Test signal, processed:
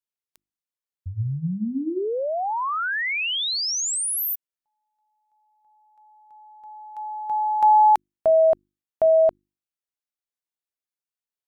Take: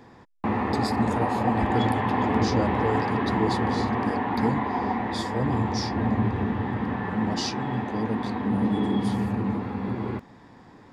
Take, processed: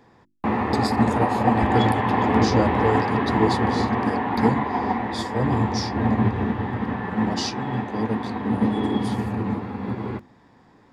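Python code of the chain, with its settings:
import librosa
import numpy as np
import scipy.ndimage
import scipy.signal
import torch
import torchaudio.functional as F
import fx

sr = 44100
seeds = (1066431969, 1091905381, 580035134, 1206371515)

y = fx.hum_notches(x, sr, base_hz=50, count=7)
y = fx.upward_expand(y, sr, threshold_db=-40.0, expansion=1.5)
y = F.gain(torch.from_numpy(y), 6.0).numpy()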